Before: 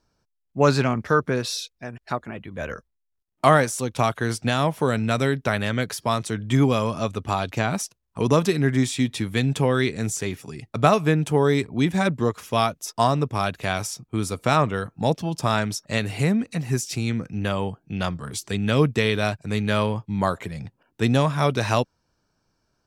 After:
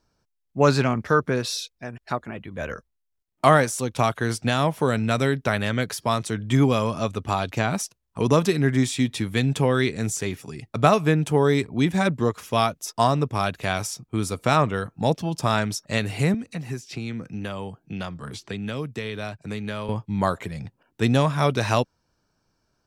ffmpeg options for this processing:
-filter_complex "[0:a]asettb=1/sr,asplit=3[s0][s1][s2];[s0]atrim=end=16.344[s3];[s1]atrim=start=16.34:end=19.89,asetpts=PTS-STARTPTS,afade=t=in:d=0.004:c=qsin,afade=t=out:st=3.546:d=0.004:c=qsin,acrossover=split=130|4600[s4][s5][s6];[s4]acompressor=threshold=0.00794:ratio=4[s7];[s5]acompressor=threshold=0.0316:ratio=4[s8];[s6]acompressor=threshold=0.00224:ratio=4[s9];[s7][s8][s9]amix=inputs=3:normalize=0[s10];[s2]atrim=start=19.886[s11];[s3][s10]acrossfade=d=0.004:c1=hsin:c2=qsin[s12];[s12][s11]acrossfade=d=0.004:c1=qsin:c2=hsin"

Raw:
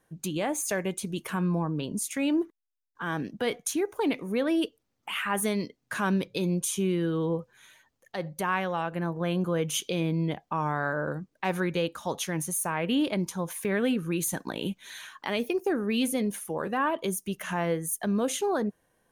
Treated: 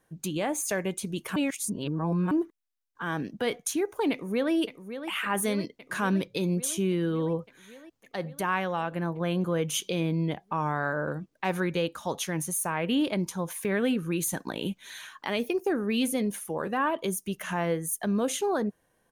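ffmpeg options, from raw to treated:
-filter_complex "[0:a]asplit=2[s0][s1];[s1]afade=t=in:st=4.11:d=0.01,afade=t=out:st=4.53:d=0.01,aecho=0:1:560|1120|1680|2240|2800|3360|3920|4480|5040|5600|6160|6720:0.316228|0.237171|0.177878|0.133409|0.100056|0.0750423|0.0562817|0.0422113|0.0316585|0.0237439|0.0178079|0.0133559[s2];[s0][s2]amix=inputs=2:normalize=0,asplit=3[s3][s4][s5];[s3]atrim=end=1.362[s6];[s4]atrim=start=1.358:end=2.312,asetpts=PTS-STARTPTS,areverse[s7];[s5]atrim=start=2.308[s8];[s6][s7]acrossfade=d=0.004:c1=hsin:c2=hsin[s9];[s9][s8]acrossfade=d=0.004:c1=hsin:c2=hsin"

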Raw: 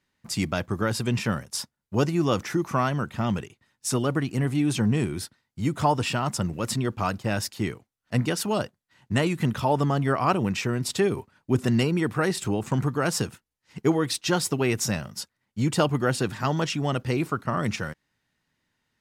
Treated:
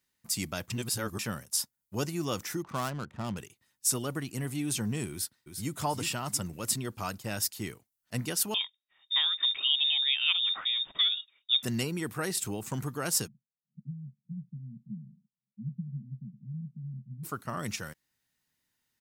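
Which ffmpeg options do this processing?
-filter_complex "[0:a]asettb=1/sr,asplit=3[s0][s1][s2];[s0]atrim=end=2.624[s3];[s1]atrim=start=2.62:end=3.37,asetpts=PTS-STARTPTS,afade=t=in:d=0.004:c=qsin,afade=t=out:st=0.746:d=0.004:c=qsin,adynamicsmooth=sensitivity=4.5:basefreq=820[s4];[s2]atrim=start=3.366[s5];[s3][s4]acrossfade=d=0.004:c1=hsin:c2=qsin[s6];[s6][s5]acrossfade=d=0.004:c1=qsin:c2=hsin,asplit=2[s7][s8];[s8]afade=t=in:st=5.11:d=0.01,afade=t=out:st=5.77:d=0.01,aecho=0:1:350|700|1050|1400|1750:0.446684|0.178673|0.0714694|0.0285877|0.0114351[s9];[s7][s9]amix=inputs=2:normalize=0,asettb=1/sr,asplit=3[s10][s11][s12];[s10]atrim=end=8.544[s13];[s11]atrim=start=8.54:end=11.63,asetpts=PTS-STARTPTS,afade=t=in:d=0.004:c=qsin,afade=t=out:st=3.086:d=0.004:c=qsin,lowpass=f=3200:t=q:w=0.5098,lowpass=f=3200:t=q:w=0.6013,lowpass=f=3200:t=q:w=0.9,lowpass=f=3200:t=q:w=2.563,afreqshift=-3800[s14];[s12]atrim=start=11.626[s15];[s13][s14]acrossfade=d=0.004:c1=hsin:c2=qsin[s16];[s16][s15]acrossfade=d=0.004:c1=qsin:c2=hsin,asplit=3[s17][s18][s19];[s17]afade=t=out:st=13.26:d=0.02[s20];[s18]asuperpass=centerf=170:order=12:qfactor=1.7,afade=t=in:st=13.26:d=0.02,afade=t=out:st=17.23:d=0.02[s21];[s19]afade=t=in:st=17.23:d=0.02[s22];[s20][s21][s22]amix=inputs=3:normalize=0,asplit=3[s23][s24][s25];[s23]atrim=end=0.702[s26];[s24]atrim=start=0.698:end=1.192,asetpts=PTS-STARTPTS,areverse[s27];[s25]atrim=start=1.188[s28];[s26][s27]acrossfade=d=0.004:c1=hsin:c2=hsin[s29];[s29][s28]acrossfade=d=0.004:c1=hsin:c2=hsin,aemphasis=mode=production:type=75fm,volume=0.355"

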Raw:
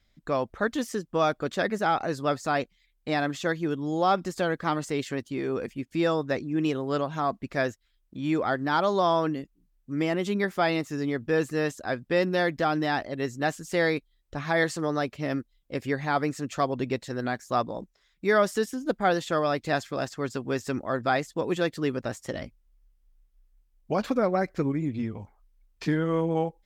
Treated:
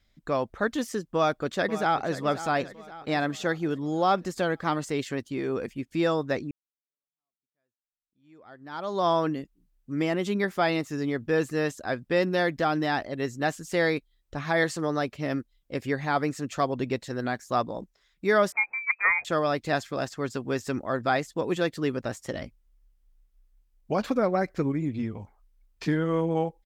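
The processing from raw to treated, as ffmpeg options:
-filter_complex "[0:a]asplit=2[s0][s1];[s1]afade=t=in:st=1.15:d=0.01,afade=t=out:st=2.19:d=0.01,aecho=0:1:530|1060|1590|2120|2650:0.223872|0.111936|0.055968|0.027984|0.013992[s2];[s0][s2]amix=inputs=2:normalize=0,asettb=1/sr,asplit=3[s3][s4][s5];[s3]atrim=end=18.524[s6];[s4]atrim=start=18.52:end=19.25,asetpts=PTS-STARTPTS,afade=t=in:d=0.004:c=qsin,afade=t=out:st=0.726:d=0.004:c=qsin,lowpass=f=2200:t=q:w=0.5098,lowpass=f=2200:t=q:w=0.6013,lowpass=f=2200:t=q:w=0.9,lowpass=f=2200:t=q:w=2.563,afreqshift=-2600[s7];[s5]atrim=start=19.246[s8];[s6][s7]acrossfade=d=0.004:c1=hsin:c2=qsin[s9];[s9][s8]acrossfade=d=0.004:c1=qsin:c2=hsin,asplit=2[s10][s11];[s10]atrim=end=6.51,asetpts=PTS-STARTPTS,afade=t=out:st=6.506:d=0.004:c=hsin[s12];[s11]atrim=start=6.51,asetpts=PTS-STARTPTS,afade=t=in:d=2.56:c=exp[s13];[s12][s13]concat=n=2:v=0:a=1"

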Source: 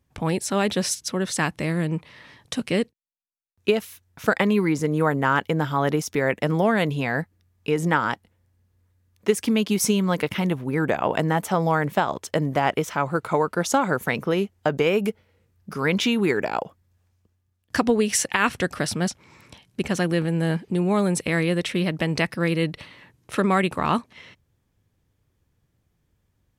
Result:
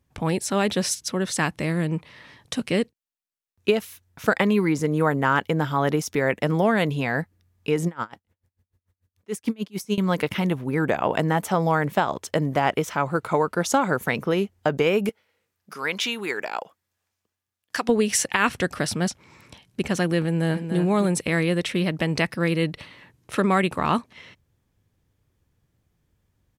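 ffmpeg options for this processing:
-filter_complex "[0:a]asettb=1/sr,asplit=3[s0][s1][s2];[s0]atrim=end=7.874[s3];[s1]atrim=start=7.87:end=9.98,asetpts=PTS-STARTPTS,afade=t=in:d=0.004:c=qsin,afade=t=out:st=2.106:d=0.004:c=qsin,aeval=exprs='val(0)*pow(10,-31*(0.5-0.5*cos(2*PI*6.8*n/s))/20)':c=same[s4];[s2]atrim=start=9.976[s5];[s3][s4]acrossfade=d=0.004:c1=hsin:c2=qsin[s6];[s6][s5]acrossfade=d=0.004:c1=qsin:c2=hsin,asettb=1/sr,asplit=3[s7][s8][s9];[s7]atrim=end=15.094[s10];[s8]atrim=start=15.09:end=17.89,asetpts=PTS-STARTPTS,afade=t=in:d=0.004:c=qsin,afade=t=out:st=2.796:d=0.004:c=qsin,highpass=f=1000:p=1[s11];[s9]atrim=start=17.886[s12];[s10][s11]acrossfade=d=0.004:c1=hsin:c2=qsin[s13];[s13][s12]acrossfade=d=0.004:c1=qsin:c2=hsin,asplit=2[s14][s15];[s15]afade=t=in:st=20.24:d=0.01,afade=t=out:st=20.76:d=0.01,aecho=0:1:290|580:0.398107|0.0597161[s16];[s14][s16]amix=inputs=2:normalize=0"

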